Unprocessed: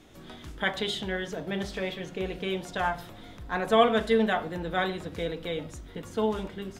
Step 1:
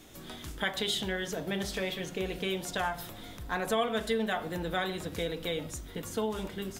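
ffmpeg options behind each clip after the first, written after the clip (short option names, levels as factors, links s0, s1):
-af "acompressor=threshold=0.0316:ratio=2.5,aemphasis=mode=production:type=50kf"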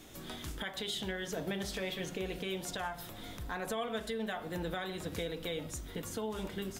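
-af "alimiter=level_in=1.33:limit=0.0631:level=0:latency=1:release=410,volume=0.75"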